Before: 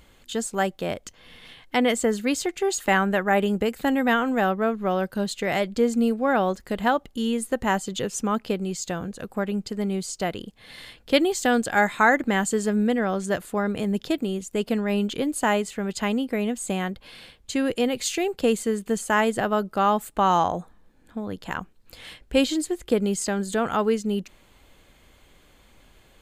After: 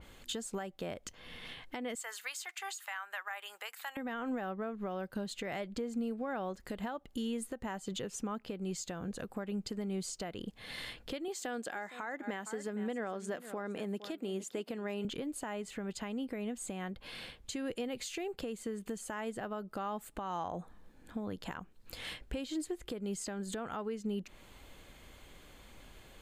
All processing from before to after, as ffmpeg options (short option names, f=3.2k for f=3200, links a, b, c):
-filter_complex "[0:a]asettb=1/sr,asplit=3[a][b][c];[a]atrim=end=1.954[d];[b]atrim=start=1.95:end=3.97,asetpts=PTS-STARTPTS,afade=t=in:d=0.004:c=qsin,afade=t=out:st=2.016:d=0.004:c=qsin,highpass=f=930:w=0.5412,highpass=f=930:w=1.3066,highshelf=f=8k:g=7[e];[c]atrim=start=3.966[f];[d][e]acrossfade=d=0.004:c1=hsin:c2=qsin[g];[g][f]acrossfade=d=0.004:c1=qsin:c2=hsin,asettb=1/sr,asplit=3[h][i][j];[h]atrim=end=11.284[k];[i]atrim=start=11.28:end=15.05,asetpts=PTS-STARTPTS,afade=t=in:d=0.004:c=qsin,afade=t=out:st=3.766:d=0.004:c=qsin,highpass=260,aecho=1:1:462:0.126,atrim=end_sample=166257[l];[j]atrim=start=15.046[m];[k][l]acrossfade=d=0.004:c1=hsin:c2=qsin[n];[n][m]acrossfade=d=0.004:c1=qsin:c2=hsin,acompressor=threshold=-30dB:ratio=6,alimiter=level_in=4dB:limit=-24dB:level=0:latency=1:release=347,volume=-4dB,adynamicequalizer=threshold=0.00158:dfrequency=3600:dqfactor=0.7:tfrequency=3600:tqfactor=0.7:attack=5:release=100:ratio=0.375:range=2.5:mode=cutabove:tftype=highshelf"